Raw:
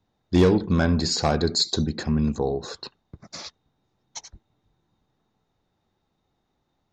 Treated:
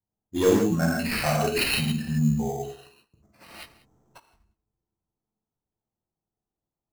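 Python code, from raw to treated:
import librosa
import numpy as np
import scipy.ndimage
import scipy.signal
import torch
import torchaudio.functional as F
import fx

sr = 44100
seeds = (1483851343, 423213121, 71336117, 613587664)

y = fx.noise_reduce_blind(x, sr, reduce_db=16)
y = fx.env_lowpass(y, sr, base_hz=1100.0, full_db=-19.0)
y = y + 10.0 ** (-20.5 / 20.0) * np.pad(y, (int(189 * sr / 1000.0), 0))[:len(y)]
y = fx.rev_gated(y, sr, seeds[0], gate_ms=190, shape='flat', drr_db=-4.0)
y = fx.over_compress(y, sr, threshold_db=-59.0, ratio=-0.5, at=(3.4, 4.18), fade=0.02)
y = fx.sample_hold(y, sr, seeds[1], rate_hz=6900.0, jitter_pct=0)
y = F.gain(torch.from_numpy(y), -5.0).numpy()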